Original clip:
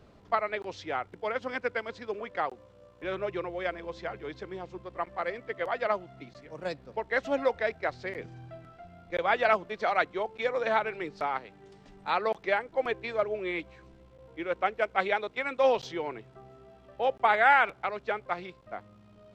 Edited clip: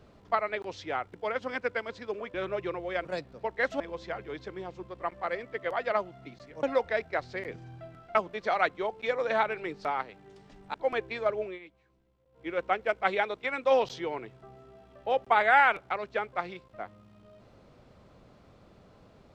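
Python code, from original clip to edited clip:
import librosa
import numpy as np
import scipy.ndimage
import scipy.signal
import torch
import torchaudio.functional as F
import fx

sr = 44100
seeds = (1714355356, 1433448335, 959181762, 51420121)

y = fx.edit(x, sr, fx.cut(start_s=2.34, length_s=0.7),
    fx.move(start_s=6.58, length_s=0.75, to_s=3.75),
    fx.cut(start_s=8.85, length_s=0.66),
    fx.cut(start_s=12.1, length_s=0.57),
    fx.fade_down_up(start_s=13.36, length_s=1.05, db=-16.0, fade_s=0.16), tone=tone)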